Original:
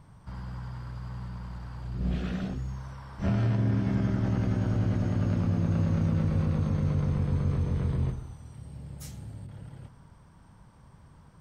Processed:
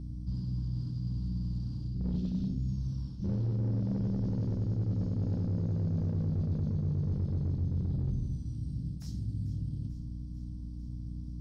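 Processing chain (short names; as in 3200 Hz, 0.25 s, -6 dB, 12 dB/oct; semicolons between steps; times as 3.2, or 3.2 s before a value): EQ curve 270 Hz 0 dB, 670 Hz -25 dB, 2000 Hz -30 dB, 5100 Hz +14 dB; hard clip -25 dBFS, distortion -12 dB; on a send at -10.5 dB: reverb RT60 0.85 s, pre-delay 6 ms; on the sum: hum 60 Hz, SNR 17 dB; reverse; compressor, threshold -36 dBFS, peak gain reduction 12.5 dB; reverse; air absorption 350 m; thin delay 0.444 s, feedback 67%, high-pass 1400 Hz, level -15 dB; gain +7 dB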